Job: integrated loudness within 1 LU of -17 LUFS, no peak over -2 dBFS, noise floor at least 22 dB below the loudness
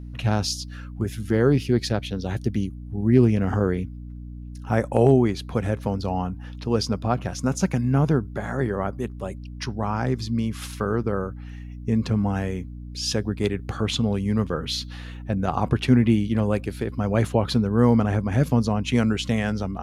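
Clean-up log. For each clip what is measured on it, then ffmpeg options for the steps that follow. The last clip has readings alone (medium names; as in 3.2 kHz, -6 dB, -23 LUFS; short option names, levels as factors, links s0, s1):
hum 60 Hz; highest harmonic 300 Hz; hum level -35 dBFS; loudness -24.0 LUFS; peak level -5.0 dBFS; loudness target -17.0 LUFS
-> -af "bandreject=f=60:t=h:w=4,bandreject=f=120:t=h:w=4,bandreject=f=180:t=h:w=4,bandreject=f=240:t=h:w=4,bandreject=f=300:t=h:w=4"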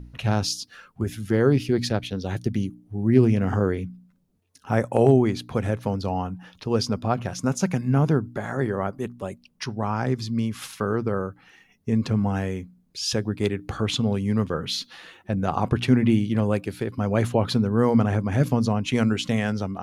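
hum not found; loudness -24.5 LUFS; peak level -4.5 dBFS; loudness target -17.0 LUFS
-> -af "volume=2.37,alimiter=limit=0.794:level=0:latency=1"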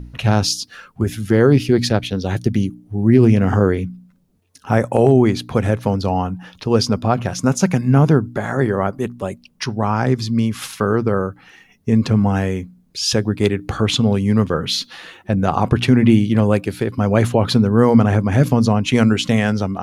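loudness -17.5 LUFS; peak level -2.0 dBFS; noise floor -53 dBFS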